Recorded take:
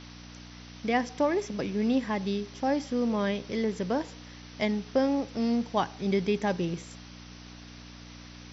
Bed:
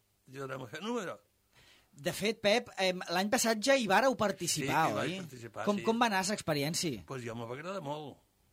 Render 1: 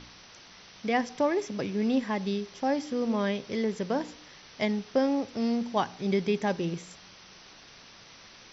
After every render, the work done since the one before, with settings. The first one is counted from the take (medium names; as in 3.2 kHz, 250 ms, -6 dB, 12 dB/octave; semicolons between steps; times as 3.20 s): de-hum 60 Hz, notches 5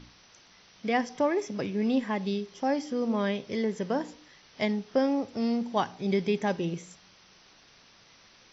noise print and reduce 6 dB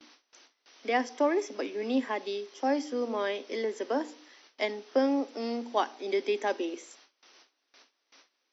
steep high-pass 250 Hz 72 dB/octave; gate with hold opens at -46 dBFS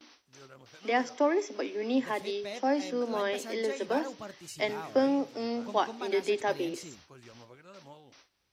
add bed -12.5 dB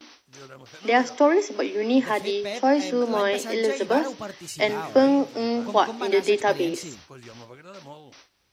trim +8 dB